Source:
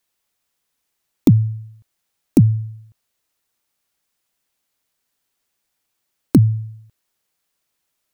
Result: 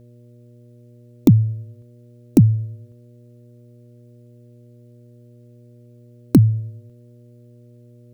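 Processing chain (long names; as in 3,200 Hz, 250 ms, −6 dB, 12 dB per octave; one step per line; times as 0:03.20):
hum with harmonics 120 Hz, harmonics 5, −47 dBFS −6 dB per octave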